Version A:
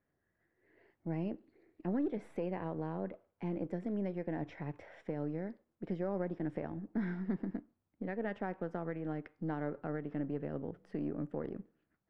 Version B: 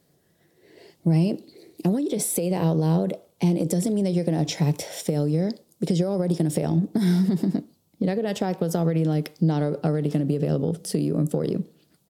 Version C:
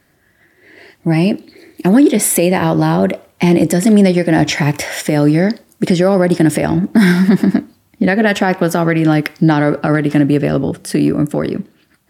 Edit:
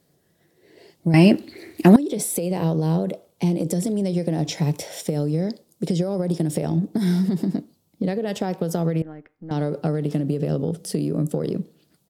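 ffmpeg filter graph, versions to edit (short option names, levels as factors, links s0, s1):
-filter_complex "[1:a]asplit=3[s0][s1][s2];[s0]atrim=end=1.142[s3];[2:a]atrim=start=1.138:end=1.962[s4];[s1]atrim=start=1.958:end=9.022[s5];[0:a]atrim=start=9.018:end=9.512[s6];[s2]atrim=start=9.508[s7];[s3][s4]acrossfade=d=0.004:c1=hsin:c2=hsin[s8];[s8][s5]acrossfade=d=0.004:c1=hsin:c2=hsin[s9];[s9][s6]acrossfade=d=0.004:c1=hsin:c2=hsin[s10];[s10][s7]acrossfade=d=0.004:c1=hsin:c2=hsin"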